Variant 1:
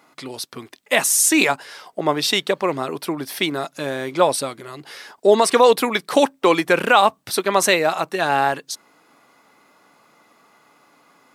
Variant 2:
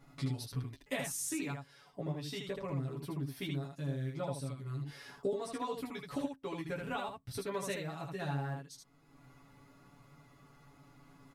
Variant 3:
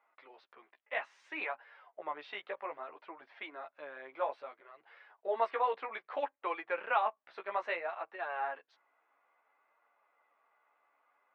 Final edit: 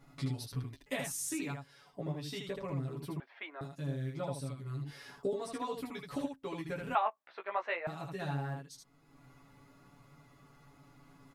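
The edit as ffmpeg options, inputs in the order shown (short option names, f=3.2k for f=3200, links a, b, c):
-filter_complex "[2:a]asplit=2[a][b];[1:a]asplit=3[c][d][e];[c]atrim=end=3.202[f];[a]atrim=start=3.198:end=3.612[g];[d]atrim=start=3.608:end=6.952[h];[b]atrim=start=6.948:end=7.872[i];[e]atrim=start=7.868[j];[f][g]acrossfade=d=0.004:c1=hsin:c2=hsin[k];[k][h]acrossfade=d=0.004:c1=hsin:c2=hsin[l];[l][i]acrossfade=d=0.004:c1=hsin:c2=hsin[m];[m][j]acrossfade=d=0.004:c1=hsin:c2=hsin"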